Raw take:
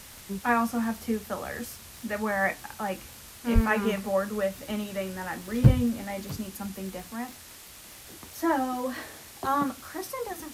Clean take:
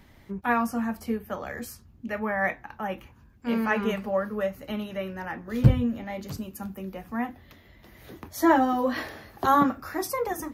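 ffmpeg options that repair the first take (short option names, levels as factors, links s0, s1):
-filter_complex "[0:a]adeclick=t=4,asplit=3[s0][s1][s2];[s0]afade=t=out:st=3.54:d=0.02[s3];[s1]highpass=f=140:w=0.5412,highpass=f=140:w=1.3066,afade=t=in:st=3.54:d=0.02,afade=t=out:st=3.66:d=0.02[s4];[s2]afade=t=in:st=3.66:d=0.02[s5];[s3][s4][s5]amix=inputs=3:normalize=0,afwtdn=0.005,asetnsamples=n=441:p=0,asendcmd='7.07 volume volume 6dB',volume=1"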